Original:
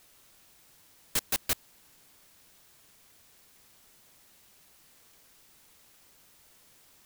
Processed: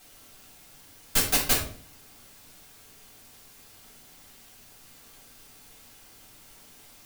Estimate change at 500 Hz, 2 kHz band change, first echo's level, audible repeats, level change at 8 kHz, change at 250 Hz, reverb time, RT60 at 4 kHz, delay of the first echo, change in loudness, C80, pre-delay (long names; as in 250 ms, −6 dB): +9.0 dB, +8.0 dB, no echo audible, no echo audible, +7.5 dB, +10.5 dB, 0.50 s, 0.40 s, no echo audible, +7.0 dB, 11.0 dB, 3 ms